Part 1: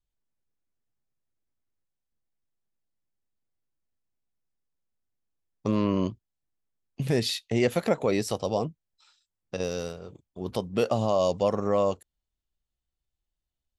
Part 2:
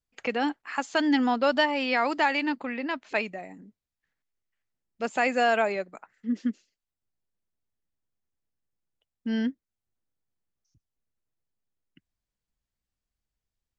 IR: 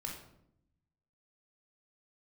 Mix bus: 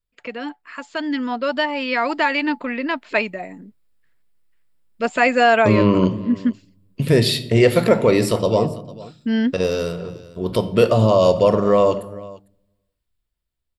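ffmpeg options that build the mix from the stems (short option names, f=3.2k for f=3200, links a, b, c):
-filter_complex "[0:a]volume=-3.5dB,asplit=3[a][b][c];[b]volume=-4dB[d];[c]volume=-17dB[e];[1:a]volume=-2dB[f];[2:a]atrim=start_sample=2205[g];[d][g]afir=irnorm=-1:irlink=0[h];[e]aecho=0:1:451:1[i];[a][f][h][i]amix=inputs=4:normalize=0,equalizer=f=6.2k:w=4.9:g=-11,dynaudnorm=f=300:g=13:m=13.5dB,asuperstop=centerf=800:order=20:qfactor=7.2"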